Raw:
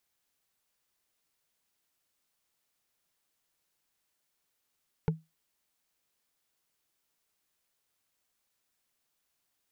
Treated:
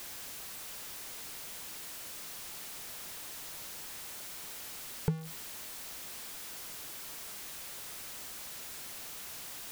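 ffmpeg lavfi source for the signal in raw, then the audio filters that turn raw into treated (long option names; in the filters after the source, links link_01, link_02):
-f lavfi -i "aevalsrc='0.0944*pow(10,-3*t/0.21)*sin(2*PI*160*t)+0.0562*pow(10,-3*t/0.062)*sin(2*PI*441.1*t)+0.0335*pow(10,-3*t/0.028)*sin(2*PI*864.6*t)+0.02*pow(10,-3*t/0.015)*sin(2*PI*1429.3*t)+0.0119*pow(10,-3*t/0.009)*sin(2*PI*2134.4*t)':duration=0.45:sample_rate=44100"
-af "aeval=exprs='val(0)+0.5*0.0126*sgn(val(0))':channel_layout=same"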